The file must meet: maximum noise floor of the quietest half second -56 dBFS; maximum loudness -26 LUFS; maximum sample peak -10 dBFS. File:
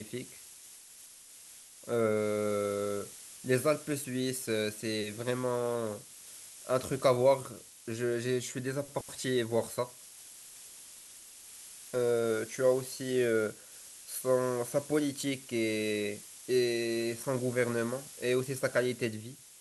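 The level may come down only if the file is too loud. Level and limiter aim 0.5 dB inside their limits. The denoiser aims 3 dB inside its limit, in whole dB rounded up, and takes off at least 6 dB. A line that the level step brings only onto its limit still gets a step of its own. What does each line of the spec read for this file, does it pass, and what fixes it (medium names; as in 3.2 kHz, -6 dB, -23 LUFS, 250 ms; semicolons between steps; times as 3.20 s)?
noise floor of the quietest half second -53 dBFS: fail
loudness -32.0 LUFS: pass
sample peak -13.5 dBFS: pass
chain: noise reduction 6 dB, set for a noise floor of -53 dBFS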